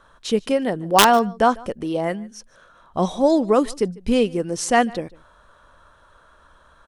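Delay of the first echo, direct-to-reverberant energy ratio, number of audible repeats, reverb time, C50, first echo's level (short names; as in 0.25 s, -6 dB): 0.148 s, none, 1, none, none, -23.5 dB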